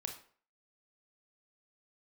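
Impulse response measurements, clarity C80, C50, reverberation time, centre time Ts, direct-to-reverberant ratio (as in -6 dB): 12.5 dB, 8.5 dB, 0.50 s, 18 ms, 3.5 dB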